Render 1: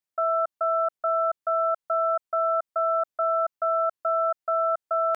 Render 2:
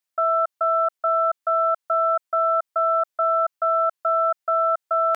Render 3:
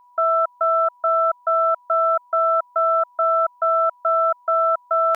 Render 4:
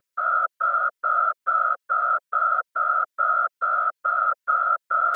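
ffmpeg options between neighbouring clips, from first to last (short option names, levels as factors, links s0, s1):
-af "lowshelf=f=500:g=-10,acontrast=51"
-af "aeval=exprs='val(0)+0.00251*sin(2*PI*980*n/s)':c=same,volume=1.26"
-af "asuperstop=centerf=860:order=12:qfactor=1.4,afftfilt=real='hypot(re,im)*cos(2*PI*random(0))':imag='hypot(re,im)*sin(2*PI*random(1))':win_size=512:overlap=0.75,volume=1.68"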